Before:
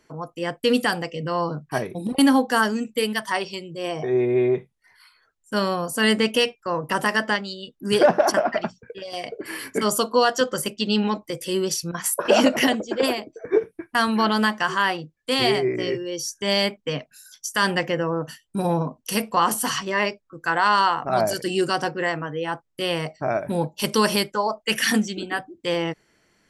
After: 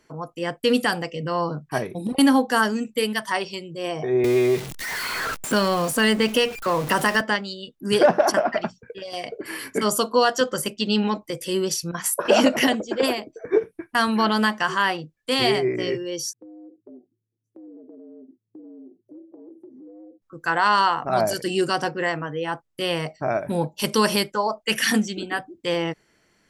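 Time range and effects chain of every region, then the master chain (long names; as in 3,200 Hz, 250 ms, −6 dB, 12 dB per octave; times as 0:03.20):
0:04.24–0:07.21: converter with a step at zero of −31.5 dBFS + multiband upward and downward compressor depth 70%
0:16.33–0:20.22: inverse Chebyshev low-pass filter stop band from 1,100 Hz, stop band 60 dB + downward compressor 8 to 1, threshold −41 dBFS + frequency shifter +110 Hz
whole clip: no processing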